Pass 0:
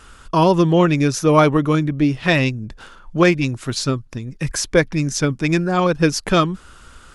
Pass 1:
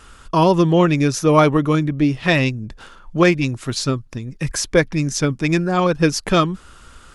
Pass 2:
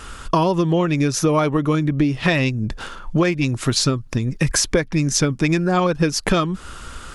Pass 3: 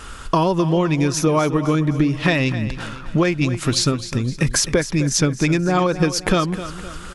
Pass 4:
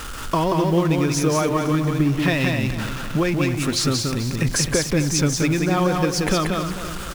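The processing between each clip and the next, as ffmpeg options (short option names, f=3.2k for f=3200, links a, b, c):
-af "bandreject=f=1.5k:w=29"
-af "acompressor=threshold=-23dB:ratio=10,volume=8.5dB"
-af "aecho=1:1:258|516|774|1032:0.224|0.101|0.0453|0.0204"
-af "aeval=exprs='val(0)+0.5*0.0531*sgn(val(0))':c=same,acrusher=bits=8:mode=log:mix=0:aa=0.000001,aecho=1:1:182:0.668,volume=-4.5dB"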